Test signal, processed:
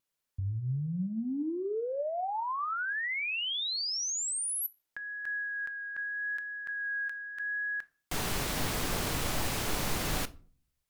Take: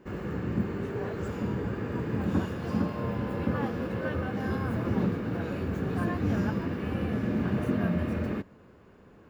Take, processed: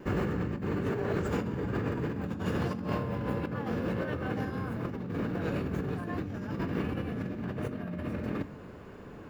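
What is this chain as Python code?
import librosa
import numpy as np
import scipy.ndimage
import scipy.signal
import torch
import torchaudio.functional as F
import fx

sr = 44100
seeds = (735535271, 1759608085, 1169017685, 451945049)

y = fx.over_compress(x, sr, threshold_db=-36.0, ratio=-1.0)
y = fx.vibrato(y, sr, rate_hz=0.82, depth_cents=11.0)
y = fx.room_shoebox(y, sr, seeds[0], volume_m3=320.0, walls='furnished', distance_m=0.36)
y = y * librosa.db_to_amplitude(2.5)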